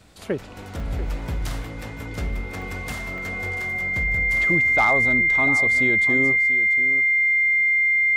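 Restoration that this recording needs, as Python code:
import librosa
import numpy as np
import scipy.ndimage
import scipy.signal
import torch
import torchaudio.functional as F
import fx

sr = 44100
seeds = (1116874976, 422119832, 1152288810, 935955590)

y = fx.fix_declip(x, sr, threshold_db=-10.5)
y = fx.notch(y, sr, hz=2100.0, q=30.0)
y = fx.fix_interpolate(y, sr, at_s=(0.8, 1.82, 2.62, 3.18), length_ms=2.0)
y = fx.fix_echo_inverse(y, sr, delay_ms=688, level_db=-13.0)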